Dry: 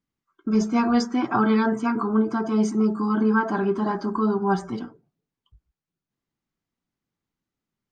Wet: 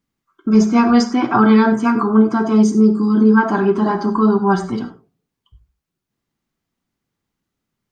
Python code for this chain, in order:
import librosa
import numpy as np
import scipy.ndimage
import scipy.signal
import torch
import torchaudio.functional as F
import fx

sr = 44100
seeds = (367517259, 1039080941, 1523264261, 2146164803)

y = fx.rev_gated(x, sr, seeds[0], gate_ms=120, shape='flat', drr_db=10.0)
y = fx.spec_box(y, sr, start_s=2.63, length_s=0.74, low_hz=520.0, high_hz=3200.0, gain_db=-9)
y = y * 10.0 ** (7.0 / 20.0)